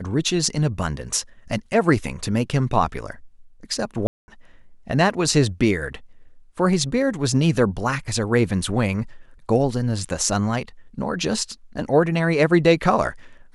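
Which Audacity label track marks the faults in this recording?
4.070000	4.280000	dropout 210 ms

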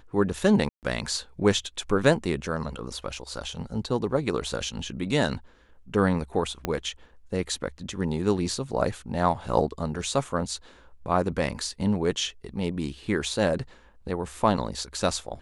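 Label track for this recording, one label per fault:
0.690000	0.830000	dropout 138 ms
6.650000	6.650000	pop -12 dBFS

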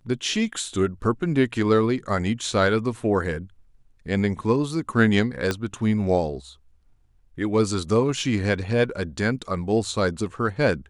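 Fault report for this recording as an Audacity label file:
5.510000	5.510000	pop -10 dBFS

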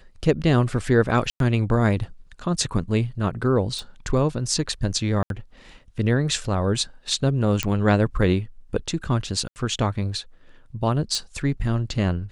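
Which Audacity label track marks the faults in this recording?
1.300000	1.400000	dropout 102 ms
3.790000	3.790000	pop
5.230000	5.300000	dropout 72 ms
7.630000	7.630000	pop -6 dBFS
9.480000	9.560000	dropout 79 ms
11.150000	11.150000	pop -13 dBFS

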